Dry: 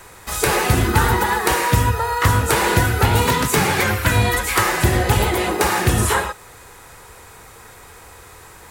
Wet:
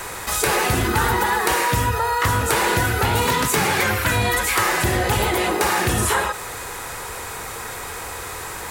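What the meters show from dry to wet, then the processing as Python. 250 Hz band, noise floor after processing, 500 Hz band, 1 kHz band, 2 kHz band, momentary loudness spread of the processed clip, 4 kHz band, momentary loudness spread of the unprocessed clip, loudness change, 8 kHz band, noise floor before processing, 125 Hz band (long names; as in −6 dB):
−3.0 dB, −32 dBFS, −1.5 dB, −0.5 dB, −0.5 dB, 12 LU, −0.5 dB, 3 LU, −3.0 dB, 0.0 dB, −43 dBFS, −5.5 dB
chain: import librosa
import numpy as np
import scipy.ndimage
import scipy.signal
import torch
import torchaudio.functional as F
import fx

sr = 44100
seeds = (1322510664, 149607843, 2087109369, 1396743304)

y = fx.low_shelf(x, sr, hz=250.0, db=-5.5)
y = fx.env_flatten(y, sr, amount_pct=50)
y = y * librosa.db_to_amplitude(-3.0)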